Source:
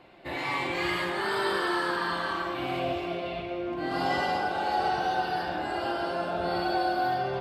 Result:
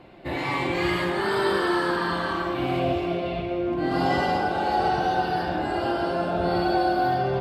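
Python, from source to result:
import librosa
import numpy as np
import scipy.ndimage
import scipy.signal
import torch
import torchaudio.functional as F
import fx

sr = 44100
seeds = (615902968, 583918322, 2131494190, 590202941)

y = fx.low_shelf(x, sr, hz=450.0, db=9.0)
y = F.gain(torch.from_numpy(y), 1.5).numpy()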